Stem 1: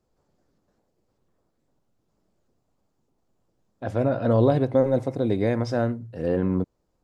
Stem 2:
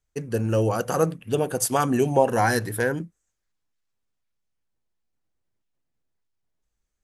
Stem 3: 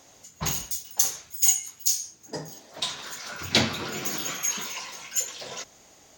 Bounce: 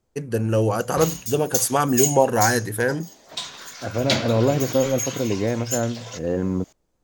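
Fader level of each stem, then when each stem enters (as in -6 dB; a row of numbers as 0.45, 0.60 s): 0.0, +2.0, -1.0 dB; 0.00, 0.00, 0.55 s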